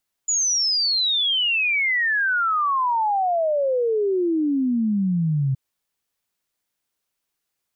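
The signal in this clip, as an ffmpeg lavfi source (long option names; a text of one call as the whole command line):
ffmpeg -f lavfi -i "aevalsrc='0.126*clip(min(t,5.27-t)/0.01,0,1)*sin(2*PI*7000*5.27/log(130/7000)*(exp(log(130/7000)*t/5.27)-1))':duration=5.27:sample_rate=44100" out.wav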